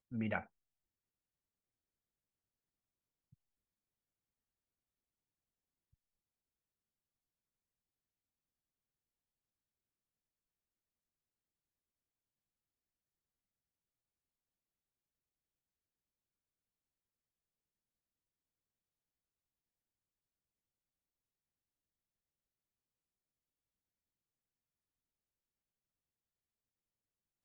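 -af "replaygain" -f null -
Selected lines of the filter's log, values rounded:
track_gain = +64.0 dB
track_peak = 0.065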